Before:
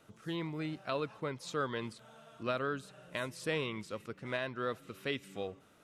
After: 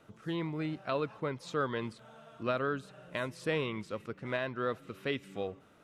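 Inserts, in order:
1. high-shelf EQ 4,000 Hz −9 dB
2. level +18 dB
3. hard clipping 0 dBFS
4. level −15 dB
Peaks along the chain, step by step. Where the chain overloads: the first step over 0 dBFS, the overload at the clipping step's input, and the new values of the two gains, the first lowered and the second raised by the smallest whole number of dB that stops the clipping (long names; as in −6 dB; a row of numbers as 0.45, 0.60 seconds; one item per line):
−23.0, −5.0, −5.0, −20.0 dBFS
no step passes full scale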